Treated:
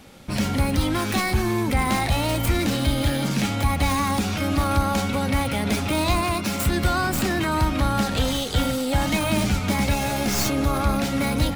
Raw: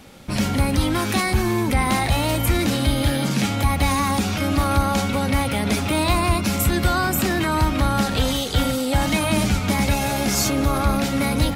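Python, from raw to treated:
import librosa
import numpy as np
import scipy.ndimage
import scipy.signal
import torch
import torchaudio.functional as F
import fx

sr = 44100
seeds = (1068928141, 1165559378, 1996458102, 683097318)

y = fx.tracing_dist(x, sr, depth_ms=0.079)
y = fx.highpass(y, sr, hz=160.0, slope=6, at=(6.21, 6.66))
y = F.gain(torch.from_numpy(y), -2.0).numpy()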